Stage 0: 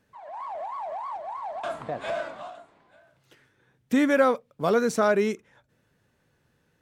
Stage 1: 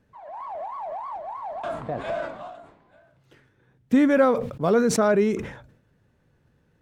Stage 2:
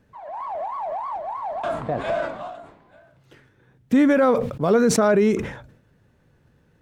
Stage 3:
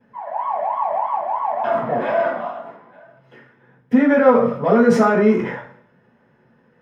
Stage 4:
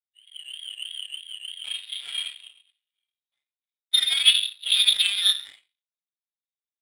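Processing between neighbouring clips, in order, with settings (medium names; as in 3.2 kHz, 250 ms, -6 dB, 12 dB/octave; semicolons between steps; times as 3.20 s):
tilt EQ -2 dB/octave; decay stretcher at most 82 dB/s
peak limiter -14.5 dBFS, peak gain reduction 6.5 dB; trim +4.5 dB
in parallel at -6 dB: saturation -24.5 dBFS, distortion -5 dB; on the sum: reverberation RT60 0.50 s, pre-delay 3 ms, DRR -13.5 dB; trim -14.5 dB
frequency inversion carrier 3.9 kHz; power-law waveshaper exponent 2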